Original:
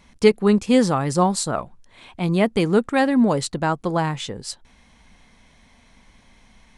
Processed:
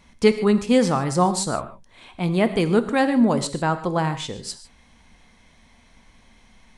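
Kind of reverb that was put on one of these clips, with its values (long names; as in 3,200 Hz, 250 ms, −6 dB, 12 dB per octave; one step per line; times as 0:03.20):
reverb whose tail is shaped and stops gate 170 ms flat, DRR 10 dB
level −1 dB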